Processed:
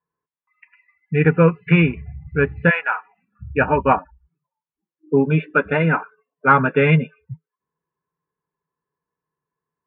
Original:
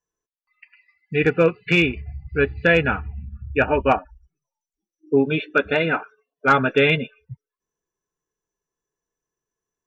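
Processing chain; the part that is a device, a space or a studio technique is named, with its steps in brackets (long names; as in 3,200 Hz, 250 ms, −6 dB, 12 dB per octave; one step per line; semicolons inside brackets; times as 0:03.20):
bass cabinet (loudspeaker in its box 73–2,300 Hz, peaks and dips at 160 Hz +10 dB, 350 Hz −3 dB, 680 Hz −4 dB, 1,000 Hz +8 dB)
0:02.69–0:03.39: high-pass filter 860 Hz → 390 Hz 24 dB per octave
level +1.5 dB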